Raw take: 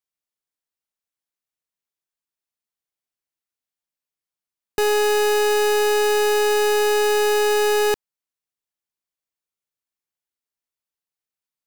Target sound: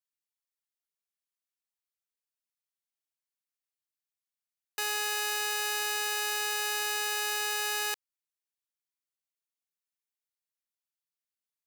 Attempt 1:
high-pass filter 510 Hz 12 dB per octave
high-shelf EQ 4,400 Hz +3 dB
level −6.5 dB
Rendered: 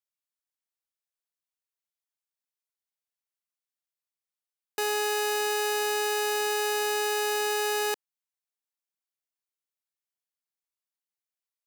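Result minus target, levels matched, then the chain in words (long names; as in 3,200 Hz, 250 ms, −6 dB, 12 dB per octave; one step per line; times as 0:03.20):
500 Hz band +11.0 dB
high-pass filter 1,200 Hz 12 dB per octave
high-shelf EQ 4,400 Hz +3 dB
level −6.5 dB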